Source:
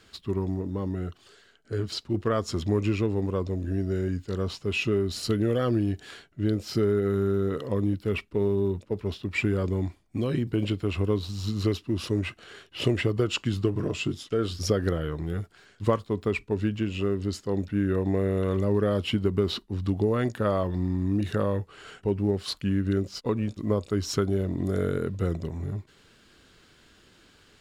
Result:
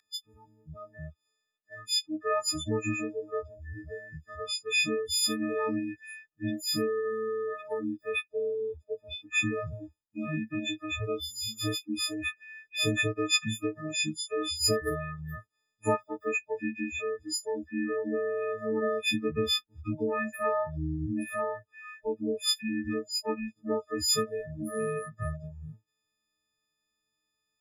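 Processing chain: frequency quantiser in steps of 6 st; spectral noise reduction 29 dB; gain -4.5 dB

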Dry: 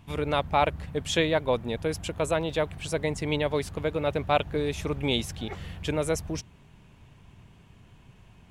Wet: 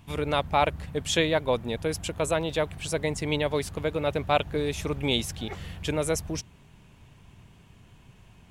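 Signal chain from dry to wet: high shelf 4600 Hz +5 dB

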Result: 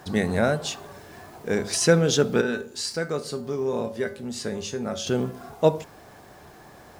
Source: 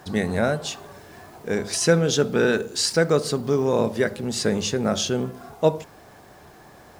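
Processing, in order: 2.41–5.07 resonator 80 Hz, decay 0.29 s, harmonics odd, mix 70%

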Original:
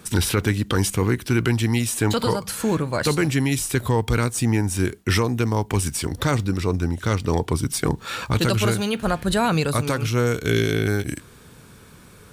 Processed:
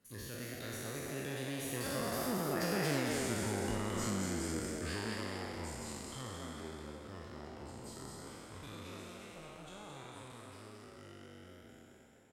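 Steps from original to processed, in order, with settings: spectral trails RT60 2.67 s; Doppler pass-by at 2.96, 49 m/s, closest 2.6 m; dynamic EQ 200 Hz, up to +7 dB, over -53 dBFS; compressor 10:1, threshold -39 dBFS, peak gain reduction 25 dB; frequency-shifting echo 0.22 s, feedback 47%, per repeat +140 Hz, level -4 dB; gain +6 dB

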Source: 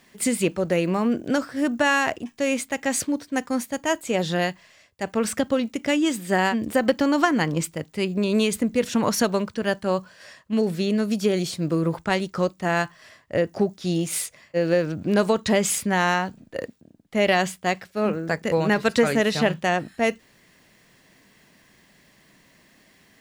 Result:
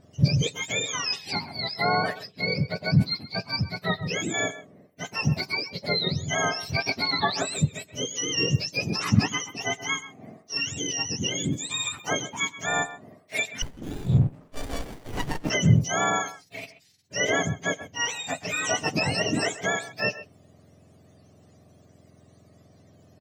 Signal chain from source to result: spectrum mirrored in octaves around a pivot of 1100 Hz; speakerphone echo 0.13 s, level -14 dB; 13.62–15.5 running maximum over 33 samples; gain -2 dB

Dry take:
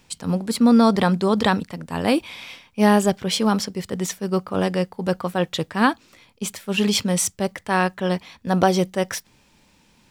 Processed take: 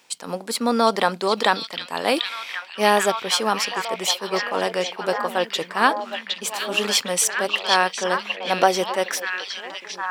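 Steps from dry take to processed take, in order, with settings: HPF 470 Hz 12 dB/oct; delay with a stepping band-pass 0.763 s, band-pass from 3400 Hz, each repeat -0.7 oct, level 0 dB; gain +2.5 dB

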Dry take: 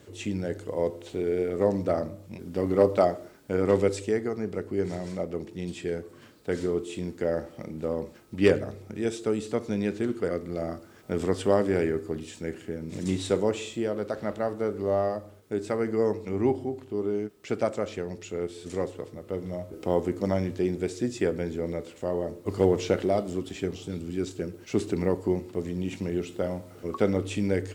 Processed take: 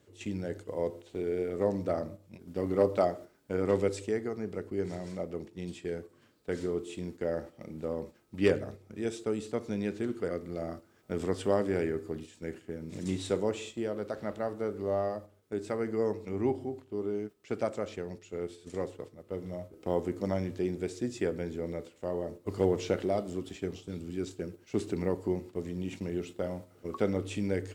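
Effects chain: gate -38 dBFS, range -7 dB; gain -5 dB

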